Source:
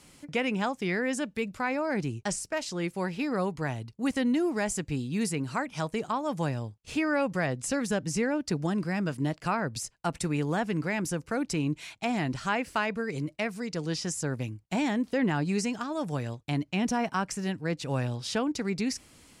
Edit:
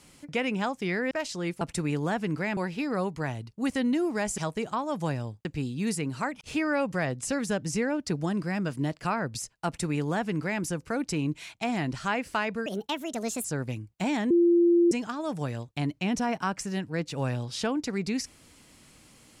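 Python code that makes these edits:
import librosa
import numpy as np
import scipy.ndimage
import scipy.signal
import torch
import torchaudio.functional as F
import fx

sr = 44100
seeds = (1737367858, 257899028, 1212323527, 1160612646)

y = fx.edit(x, sr, fx.cut(start_s=1.11, length_s=1.37),
    fx.move(start_s=4.79, length_s=0.96, to_s=6.82),
    fx.duplicate(start_s=10.07, length_s=0.96, to_s=2.98),
    fx.speed_span(start_s=13.07, length_s=1.09, speed=1.39),
    fx.bleep(start_s=15.02, length_s=0.61, hz=344.0, db=-17.0), tone=tone)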